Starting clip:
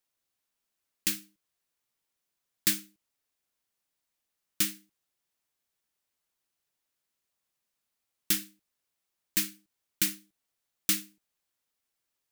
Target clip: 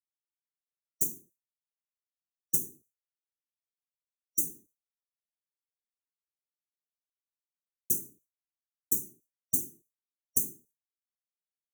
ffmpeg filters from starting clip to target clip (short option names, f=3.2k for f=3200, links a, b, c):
-af "afftfilt=real='re*(1-between(b*sr/4096,550,5500))':imag='im*(1-between(b*sr/4096,550,5500))':win_size=4096:overlap=0.75,agate=range=-33dB:threshold=-58dB:ratio=3:detection=peak,highshelf=f=6.4k:g=7.5,acompressor=threshold=-27dB:ratio=3,asetrate=46305,aresample=44100,afftfilt=real='hypot(re,im)*cos(2*PI*random(0))':imag='hypot(re,im)*sin(2*PI*random(1))':win_size=512:overlap=0.75,volume=8dB"